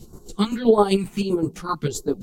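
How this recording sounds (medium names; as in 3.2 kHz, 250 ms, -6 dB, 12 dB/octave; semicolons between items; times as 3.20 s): phasing stages 2, 1.6 Hz, lowest notch 460–2600 Hz; chopped level 7.7 Hz, depth 60%, duty 35%; a shimmering, thickened sound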